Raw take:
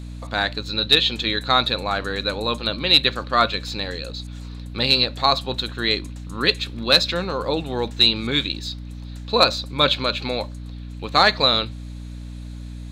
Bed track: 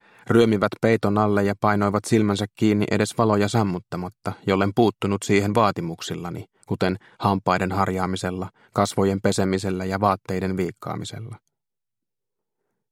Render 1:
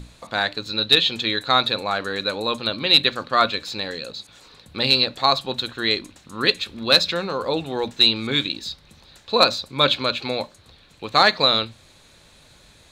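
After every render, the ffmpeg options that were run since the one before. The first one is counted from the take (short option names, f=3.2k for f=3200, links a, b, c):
-af "bandreject=f=60:t=h:w=6,bandreject=f=120:t=h:w=6,bandreject=f=180:t=h:w=6,bandreject=f=240:t=h:w=6,bandreject=f=300:t=h:w=6"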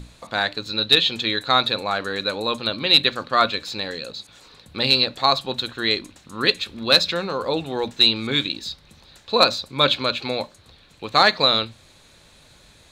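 -af anull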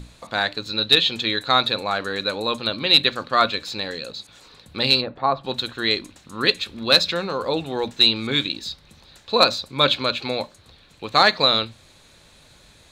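-filter_complex "[0:a]asplit=3[a][b][c];[a]afade=t=out:st=5:d=0.02[d];[b]lowpass=1.3k,afade=t=in:st=5:d=0.02,afade=t=out:st=5.43:d=0.02[e];[c]afade=t=in:st=5.43:d=0.02[f];[d][e][f]amix=inputs=3:normalize=0"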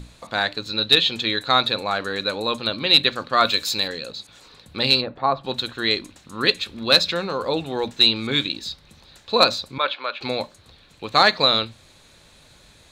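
-filter_complex "[0:a]asettb=1/sr,asplit=3[a][b][c];[a]atrim=end=3.454[d];[b]atrim=start=3.45:end=3.88,asetpts=PTS-STARTPTS,afade=t=in:d=0.004:c=qsin,afade=t=out:st=0.426:d=0.004:c=qsin,aemphasis=mode=production:type=75kf[e];[c]atrim=start=3.876[f];[d][e]acrossfade=d=0.004:c1=hsin:c2=qsin[g];[g][f]acrossfade=d=0.004:c1=qsin:c2=hsin,asettb=1/sr,asplit=3[h][i][j];[h]atrim=end=9.784[k];[i]atrim=start=9.78:end=10.21,asetpts=PTS-STARTPTS,afade=t=in:d=0.004:c=qsin,afade=t=out:st=0.426:d=0.004:c=qsin,highpass=730,lowpass=2.2k[l];[j]atrim=start=10.206[m];[k][l]acrossfade=d=0.004:c1=hsin:c2=qsin[n];[n][m]acrossfade=d=0.004:c1=qsin:c2=hsin"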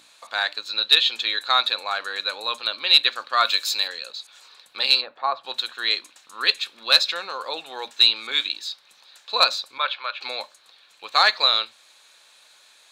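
-af "highpass=910,bandreject=f=2k:w=19"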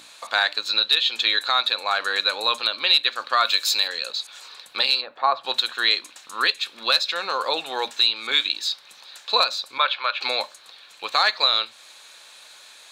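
-filter_complex "[0:a]asplit=2[a][b];[b]acompressor=threshold=-26dB:ratio=6,volume=2dB[c];[a][c]amix=inputs=2:normalize=0,alimiter=limit=-7dB:level=0:latency=1:release=375"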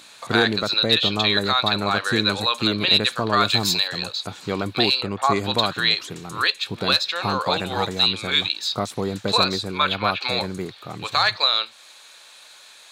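-filter_complex "[1:a]volume=-5.5dB[a];[0:a][a]amix=inputs=2:normalize=0"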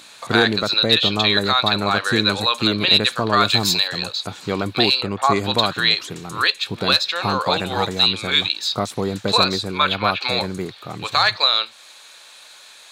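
-af "volume=2.5dB"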